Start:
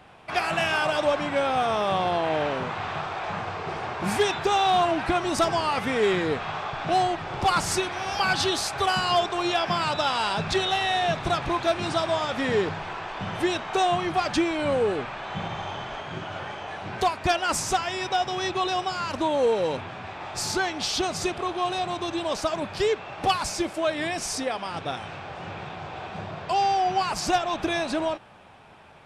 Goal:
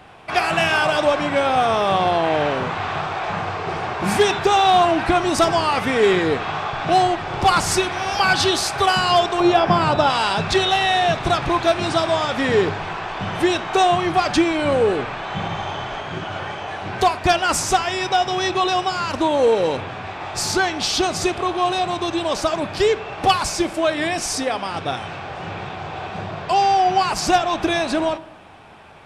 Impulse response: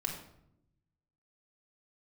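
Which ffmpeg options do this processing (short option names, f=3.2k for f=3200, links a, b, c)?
-filter_complex "[0:a]asettb=1/sr,asplit=3[a][b][c];[a]atrim=end=9.404[d];[b]atrim=start=9.4:end=10.1,asetpts=PTS-STARTPTS,afade=t=in:d=0.004:c=qsin,afade=t=out:st=0.696:d=0.004:c=qsin,tiltshelf=f=1.4k:g=6.5[e];[c]atrim=start=10.096[f];[d][e]acrossfade=d=0.004:c1=hsin:c2=qsin[g];[g][f]acrossfade=d=0.004:c1=qsin:c2=hsin,asplit=2[h][i];[1:a]atrim=start_sample=2205[j];[i][j]afir=irnorm=-1:irlink=0,volume=-13.5dB[k];[h][k]amix=inputs=2:normalize=0,volume=4.5dB"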